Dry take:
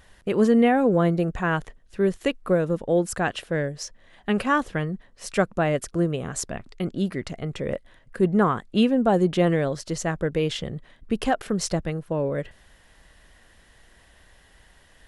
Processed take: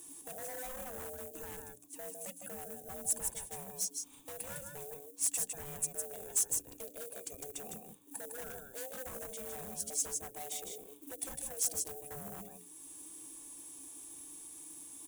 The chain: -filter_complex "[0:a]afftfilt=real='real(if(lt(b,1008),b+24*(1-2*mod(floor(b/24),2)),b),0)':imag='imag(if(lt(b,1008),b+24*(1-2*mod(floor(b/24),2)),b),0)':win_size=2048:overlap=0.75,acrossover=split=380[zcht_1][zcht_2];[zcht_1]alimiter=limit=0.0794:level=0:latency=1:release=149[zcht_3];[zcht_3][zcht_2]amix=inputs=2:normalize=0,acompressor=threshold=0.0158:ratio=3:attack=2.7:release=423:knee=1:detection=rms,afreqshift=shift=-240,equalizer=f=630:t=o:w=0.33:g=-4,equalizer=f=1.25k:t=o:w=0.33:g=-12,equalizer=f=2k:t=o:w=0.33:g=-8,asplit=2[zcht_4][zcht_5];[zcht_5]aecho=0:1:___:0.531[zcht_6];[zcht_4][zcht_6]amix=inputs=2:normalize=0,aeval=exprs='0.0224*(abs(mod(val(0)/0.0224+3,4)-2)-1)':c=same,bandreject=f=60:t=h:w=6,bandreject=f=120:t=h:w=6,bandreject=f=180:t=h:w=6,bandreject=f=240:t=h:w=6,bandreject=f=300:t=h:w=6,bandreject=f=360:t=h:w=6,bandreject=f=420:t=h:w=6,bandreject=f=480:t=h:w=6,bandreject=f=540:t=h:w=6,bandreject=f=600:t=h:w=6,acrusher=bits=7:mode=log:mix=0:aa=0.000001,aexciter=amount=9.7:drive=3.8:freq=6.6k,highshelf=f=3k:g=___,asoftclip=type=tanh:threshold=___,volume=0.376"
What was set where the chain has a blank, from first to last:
156, 8, 0.211